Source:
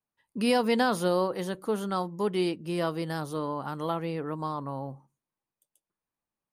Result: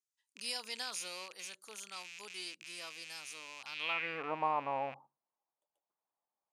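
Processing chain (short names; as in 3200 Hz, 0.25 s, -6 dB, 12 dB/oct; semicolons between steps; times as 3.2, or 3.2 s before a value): rattling part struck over -41 dBFS, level -27 dBFS; band-pass sweep 6700 Hz -> 780 Hz, 3.59–4.33; gain +5 dB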